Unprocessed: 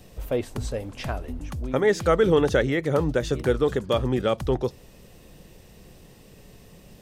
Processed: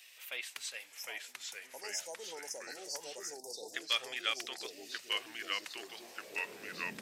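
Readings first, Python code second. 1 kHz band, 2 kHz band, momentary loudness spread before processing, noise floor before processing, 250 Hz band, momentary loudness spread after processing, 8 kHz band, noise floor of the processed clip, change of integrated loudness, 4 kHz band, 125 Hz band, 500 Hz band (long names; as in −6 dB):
−14.5 dB, −6.5 dB, 13 LU, −51 dBFS, −27.0 dB, 10 LU, +1.0 dB, −57 dBFS, −15.0 dB, +1.0 dB, below −35 dB, −25.0 dB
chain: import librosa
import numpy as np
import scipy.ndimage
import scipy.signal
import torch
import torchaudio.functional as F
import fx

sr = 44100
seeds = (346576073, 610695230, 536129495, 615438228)

y = fx.filter_sweep_highpass(x, sr, from_hz=2300.0, to_hz=230.0, start_s=5.28, end_s=6.89, q=2.0)
y = fx.spec_erase(y, sr, start_s=0.86, length_s=2.89, low_hz=1000.0, high_hz=5000.0)
y = fx.echo_pitch(y, sr, ms=720, semitones=-2, count=3, db_per_echo=-3.0)
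y = y * librosa.db_to_amplitude(-1.5)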